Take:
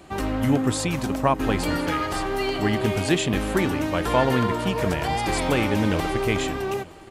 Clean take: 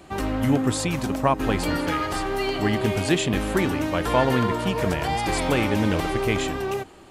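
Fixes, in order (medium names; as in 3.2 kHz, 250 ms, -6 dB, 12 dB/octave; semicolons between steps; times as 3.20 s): inverse comb 918 ms -23 dB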